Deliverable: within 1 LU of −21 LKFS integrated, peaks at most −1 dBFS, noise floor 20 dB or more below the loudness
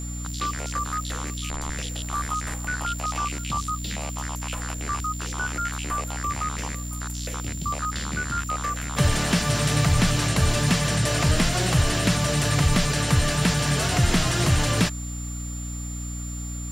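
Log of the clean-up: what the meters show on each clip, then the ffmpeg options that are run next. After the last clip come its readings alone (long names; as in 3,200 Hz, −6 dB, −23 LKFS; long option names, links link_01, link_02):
mains hum 60 Hz; hum harmonics up to 300 Hz; level of the hum −30 dBFS; interfering tone 7,200 Hz; level of the tone −37 dBFS; integrated loudness −25.0 LKFS; sample peak −8.5 dBFS; target loudness −21.0 LKFS
→ -af "bandreject=frequency=60:width_type=h:width=6,bandreject=frequency=120:width_type=h:width=6,bandreject=frequency=180:width_type=h:width=6,bandreject=frequency=240:width_type=h:width=6,bandreject=frequency=300:width_type=h:width=6"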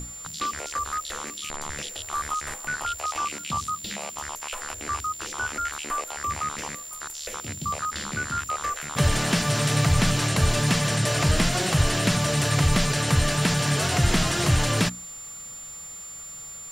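mains hum none found; interfering tone 7,200 Hz; level of the tone −37 dBFS
→ -af "bandreject=frequency=7200:width=30"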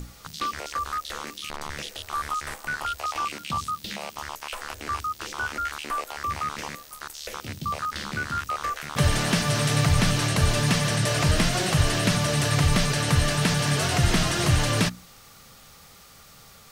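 interfering tone none found; integrated loudness −25.5 LKFS; sample peak −8.0 dBFS; target loudness −21.0 LKFS
→ -af "volume=4.5dB"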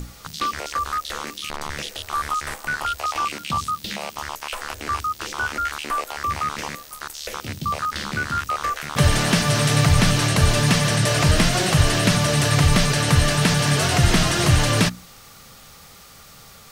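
integrated loudness −21.0 LKFS; sample peak −3.5 dBFS; background noise floor −46 dBFS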